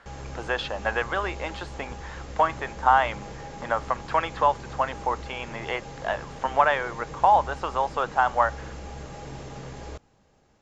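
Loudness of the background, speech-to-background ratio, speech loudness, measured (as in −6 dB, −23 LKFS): −40.0 LKFS, 14.0 dB, −26.0 LKFS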